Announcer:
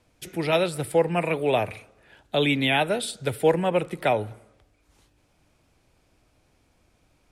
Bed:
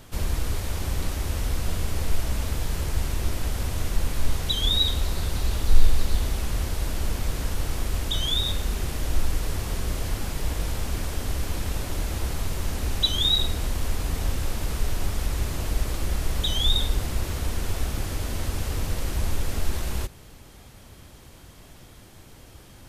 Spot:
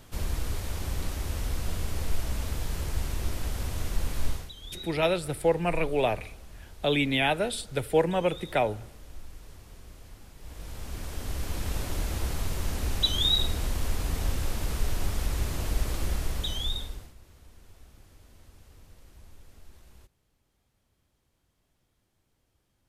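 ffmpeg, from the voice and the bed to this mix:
ffmpeg -i stem1.wav -i stem2.wav -filter_complex "[0:a]adelay=4500,volume=-3dB[link_01];[1:a]volume=13.5dB,afade=type=out:start_time=4.27:duration=0.24:silence=0.158489,afade=type=in:start_time=10.38:duration=1.41:silence=0.125893,afade=type=out:start_time=16.06:duration=1.08:silence=0.0668344[link_02];[link_01][link_02]amix=inputs=2:normalize=0" out.wav

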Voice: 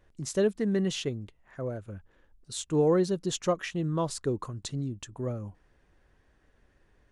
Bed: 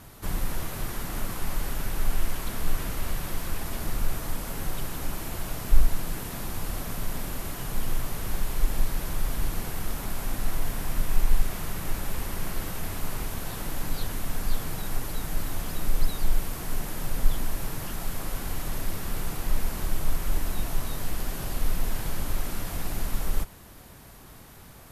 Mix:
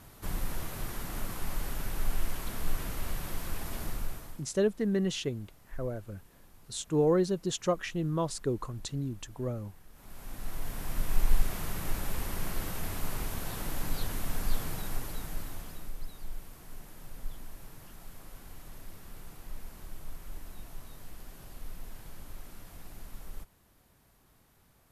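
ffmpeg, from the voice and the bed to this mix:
ffmpeg -i stem1.wav -i stem2.wav -filter_complex "[0:a]adelay=4200,volume=-1.5dB[link_01];[1:a]volume=17.5dB,afade=type=out:start_time=3.81:duration=0.65:silence=0.0944061,afade=type=in:start_time=9.92:duration=1.4:silence=0.0749894,afade=type=out:start_time=14.6:duration=1.36:silence=0.211349[link_02];[link_01][link_02]amix=inputs=2:normalize=0" out.wav

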